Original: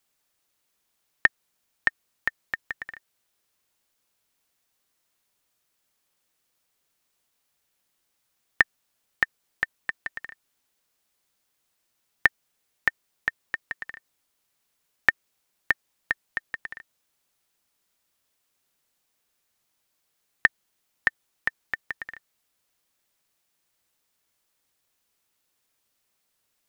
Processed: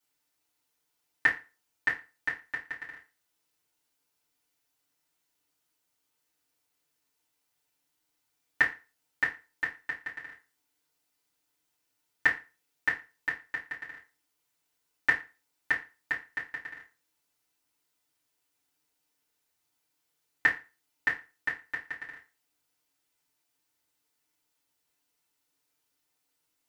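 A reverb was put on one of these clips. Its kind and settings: FDN reverb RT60 0.31 s, low-frequency decay 0.95×, high-frequency decay 0.9×, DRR -8 dB; gain -12 dB

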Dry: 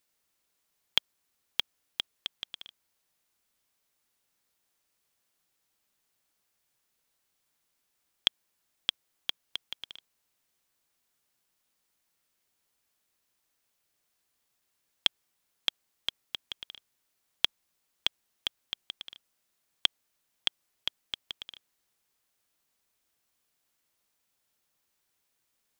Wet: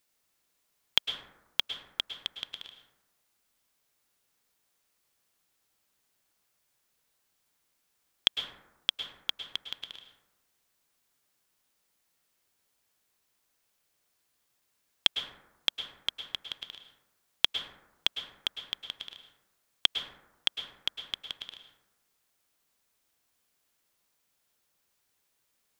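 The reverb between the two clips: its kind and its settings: plate-style reverb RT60 1 s, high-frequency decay 0.35×, pre-delay 95 ms, DRR 6.5 dB; gain +1.5 dB

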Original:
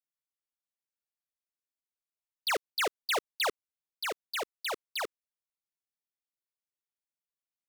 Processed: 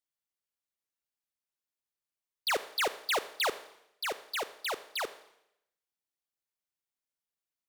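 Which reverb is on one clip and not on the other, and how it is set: Schroeder reverb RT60 0.81 s, combs from 28 ms, DRR 13.5 dB

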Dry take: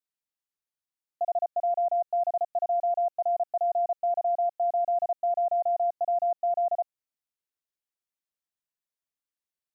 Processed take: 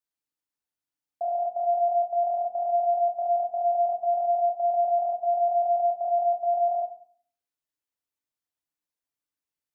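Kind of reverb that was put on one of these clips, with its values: FDN reverb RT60 0.5 s, low-frequency decay 1.55×, high-frequency decay 0.5×, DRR 2.5 dB; gain -1.5 dB

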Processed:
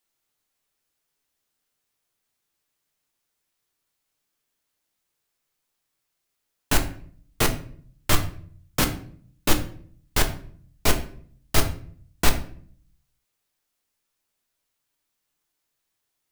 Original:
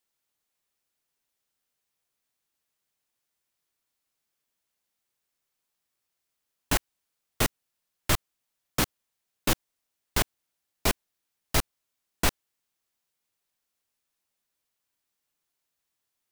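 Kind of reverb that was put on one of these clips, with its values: shoebox room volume 61 m³, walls mixed, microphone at 0.4 m; gain +2.5 dB

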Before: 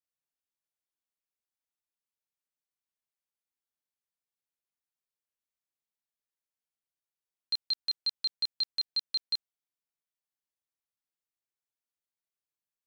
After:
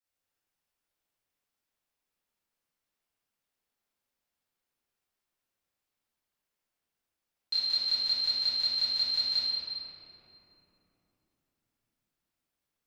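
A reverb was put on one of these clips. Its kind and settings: shoebox room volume 200 m³, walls hard, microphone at 2.1 m; gain -3 dB

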